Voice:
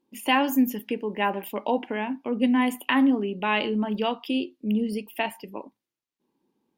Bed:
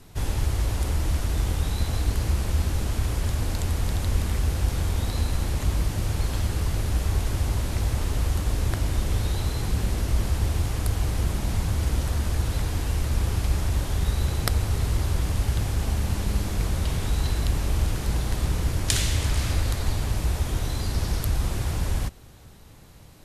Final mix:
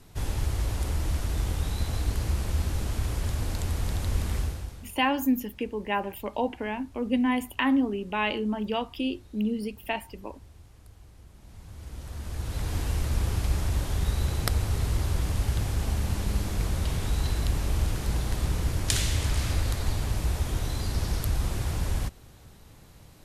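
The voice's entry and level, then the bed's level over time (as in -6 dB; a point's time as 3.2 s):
4.70 s, -3.0 dB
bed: 4.4 s -3.5 dB
5.01 s -26.5 dB
11.3 s -26.5 dB
12.75 s -2.5 dB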